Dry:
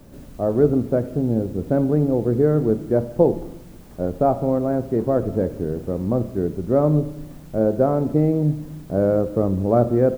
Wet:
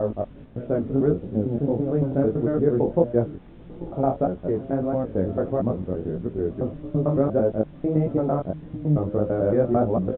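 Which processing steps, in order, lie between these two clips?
slices reordered back to front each 112 ms, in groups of 5
chorus effect 1.6 Hz, delay 16.5 ms, depth 5.8 ms
downsampling to 8,000 Hz

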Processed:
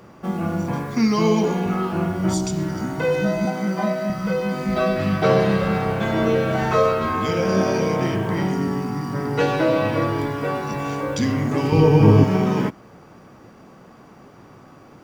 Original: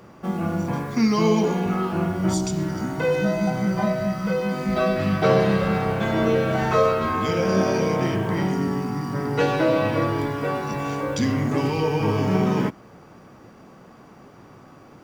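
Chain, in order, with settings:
0:03.45–0:04.10: Butterworth high-pass 180 Hz
0:11.72–0:12.24: low-shelf EQ 490 Hz +11.5 dB
level +1 dB

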